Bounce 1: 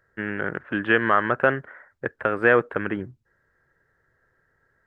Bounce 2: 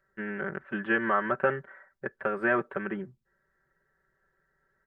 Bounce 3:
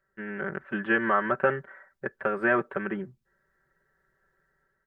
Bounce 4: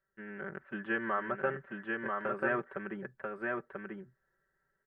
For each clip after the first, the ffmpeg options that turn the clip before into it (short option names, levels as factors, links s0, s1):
-filter_complex "[0:a]acrossover=split=2700[s0][s1];[s1]acompressor=threshold=0.00282:ratio=4:attack=1:release=60[s2];[s0][s2]amix=inputs=2:normalize=0,aecho=1:1:5.2:0.94,volume=0.376"
-af "dynaudnorm=f=140:g=5:m=1.78,volume=0.708"
-af "aecho=1:1:989:0.708,volume=0.355"